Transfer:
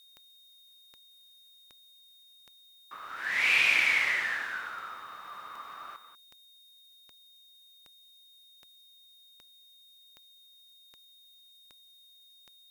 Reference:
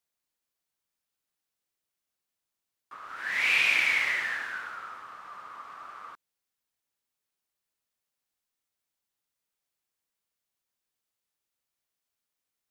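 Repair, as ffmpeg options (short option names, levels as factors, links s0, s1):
-af "adeclick=t=4,bandreject=f=3700:w=30,agate=range=0.0891:threshold=0.00316,asetnsamples=n=441:p=0,asendcmd='5.96 volume volume 11.5dB',volume=1"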